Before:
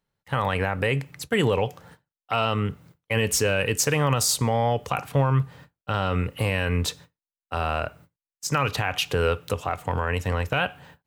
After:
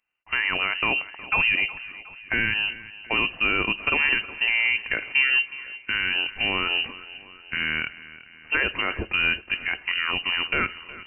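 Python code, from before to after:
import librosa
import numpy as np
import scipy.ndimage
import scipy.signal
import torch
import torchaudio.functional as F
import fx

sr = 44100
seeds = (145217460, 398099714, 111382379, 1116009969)

y = scipy.signal.sosfilt(scipy.signal.butter(2, 89.0, 'highpass', fs=sr, output='sos'), x)
y = fx.echo_feedback(y, sr, ms=365, feedback_pct=55, wet_db=-17.5)
y = fx.freq_invert(y, sr, carrier_hz=2900)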